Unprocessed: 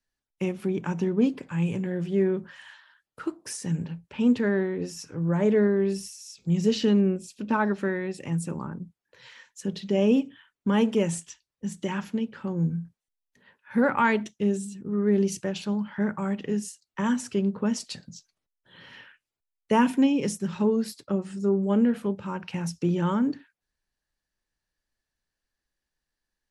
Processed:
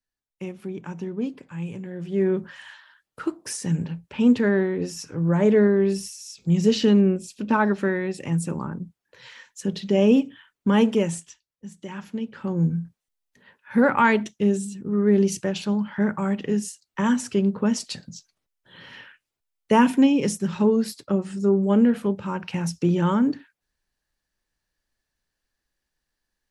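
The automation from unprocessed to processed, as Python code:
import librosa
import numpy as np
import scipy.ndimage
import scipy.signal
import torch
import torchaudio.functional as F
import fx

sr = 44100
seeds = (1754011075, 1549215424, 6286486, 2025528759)

y = fx.gain(x, sr, db=fx.line((1.93, -5.5), (2.33, 4.0), (10.87, 4.0), (11.75, -8.5), (12.52, 4.0)))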